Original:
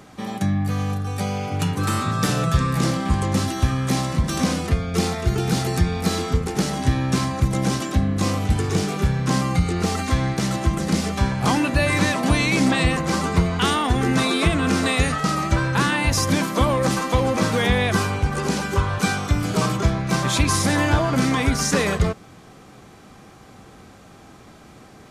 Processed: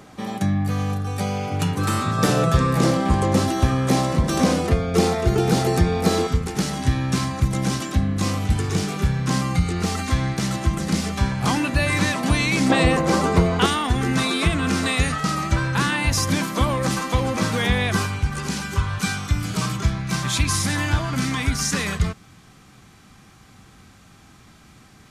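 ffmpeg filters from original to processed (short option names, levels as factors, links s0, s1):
-af "asetnsamples=n=441:p=0,asendcmd='2.18 equalizer g 7;6.27 equalizer g -4;12.7 equalizer g 6.5;13.66 equalizer g -4.5;18.06 equalizer g -11.5',equalizer=f=510:t=o:w=1.8:g=1"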